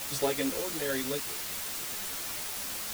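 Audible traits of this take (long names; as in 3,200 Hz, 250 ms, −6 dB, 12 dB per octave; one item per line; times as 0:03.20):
sample-and-hold tremolo, depth 75%
a quantiser's noise floor 6 bits, dither triangular
a shimmering, thickened sound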